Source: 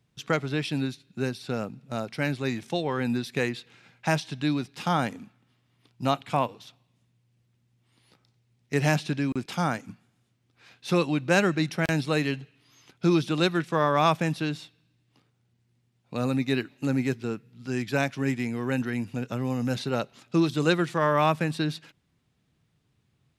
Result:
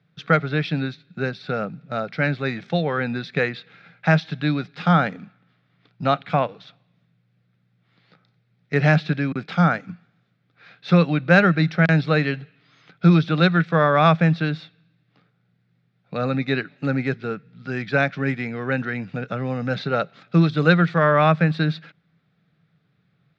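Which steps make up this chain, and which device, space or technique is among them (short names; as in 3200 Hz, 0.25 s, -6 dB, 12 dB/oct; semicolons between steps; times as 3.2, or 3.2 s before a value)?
kitchen radio (speaker cabinet 160–3800 Hz, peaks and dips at 170 Hz +9 dB, 240 Hz -8 dB, 350 Hz -8 dB, 960 Hz -10 dB, 1400 Hz +5 dB, 2900 Hz -8 dB); gain +7.5 dB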